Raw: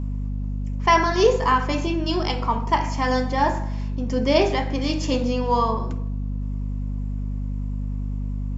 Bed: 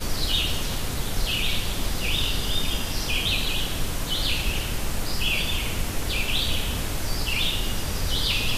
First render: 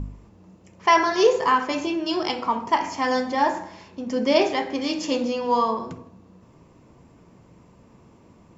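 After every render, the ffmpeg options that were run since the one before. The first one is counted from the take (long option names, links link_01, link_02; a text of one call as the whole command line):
ffmpeg -i in.wav -af "bandreject=frequency=50:width_type=h:width=4,bandreject=frequency=100:width_type=h:width=4,bandreject=frequency=150:width_type=h:width=4,bandreject=frequency=200:width_type=h:width=4,bandreject=frequency=250:width_type=h:width=4,bandreject=frequency=300:width_type=h:width=4,bandreject=frequency=350:width_type=h:width=4,bandreject=frequency=400:width_type=h:width=4" out.wav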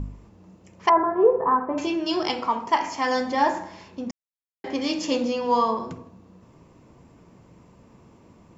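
ffmpeg -i in.wav -filter_complex "[0:a]asettb=1/sr,asplit=3[link_01][link_02][link_03];[link_01]atrim=end=0.894[link_04];[link_02]atrim=start=0.89:end=1.78,asetpts=PTS-STARTPTS,afade=type=in:duration=0.004:curve=qsin,afade=type=out:start_time=0.886:duration=0.004:curve=qsin,lowpass=frequency=1200:width=0.5412,lowpass=frequency=1200:width=1.3066[link_05];[link_03]atrim=start=1.776[link_06];[link_04][link_05]acrossfade=duration=0.004:curve1=hsin:curve2=qsin[link_07];[link_07][link_06]acrossfade=duration=0.004:curve1=qsin:curve2=hsin,asettb=1/sr,asplit=3[link_08][link_09][link_10];[link_08]atrim=end=2.464[link_11];[link_09]atrim=start=2.46:end=3.21,asetpts=PTS-STARTPTS,afade=type=in:duration=0.004:curve=qsin,afade=type=out:start_time=0.746:duration=0.004:curve=qsin,equalizer=frequency=87:width=0.4:gain=-6.5[link_12];[link_10]atrim=start=3.206[link_13];[link_11][link_12]acrossfade=duration=0.004:curve1=hsin:curve2=qsin[link_14];[link_14][link_13]acrossfade=duration=0.004:curve1=qsin:curve2=hsin,asplit=3[link_15][link_16][link_17];[link_15]atrim=end=4.11,asetpts=PTS-STARTPTS,afade=type=out:start_time=4.106:duration=0.004:curve=hsin[link_18];[link_16]atrim=start=4.11:end=4.64,asetpts=PTS-STARTPTS,volume=0[link_19];[link_17]atrim=start=4.64,asetpts=PTS-STARTPTS,afade=type=in:duration=0.004:curve=hsin[link_20];[link_18][link_19][link_20]concat=n=3:v=0:a=1" out.wav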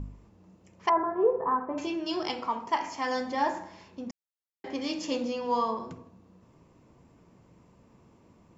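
ffmpeg -i in.wav -af "volume=-6.5dB" out.wav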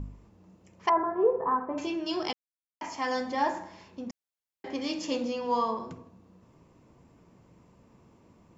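ffmpeg -i in.wav -filter_complex "[0:a]asplit=3[link_01][link_02][link_03];[link_01]atrim=end=2.33,asetpts=PTS-STARTPTS,afade=type=out:start_time=2.326:duration=0.004:curve=hsin[link_04];[link_02]atrim=start=2.33:end=2.81,asetpts=PTS-STARTPTS,volume=0[link_05];[link_03]atrim=start=2.81,asetpts=PTS-STARTPTS,afade=type=in:duration=0.004:curve=hsin[link_06];[link_04][link_05][link_06]concat=n=3:v=0:a=1" out.wav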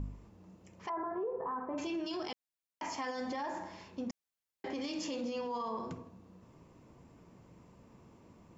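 ffmpeg -i in.wav -af "acompressor=threshold=-32dB:ratio=3,alimiter=level_in=6.5dB:limit=-24dB:level=0:latency=1:release=18,volume=-6.5dB" out.wav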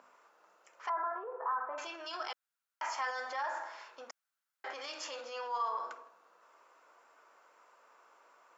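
ffmpeg -i in.wav -af "highpass=frequency=560:width=0.5412,highpass=frequency=560:width=1.3066,equalizer=frequency=1400:width_type=o:width=0.55:gain=13.5" out.wav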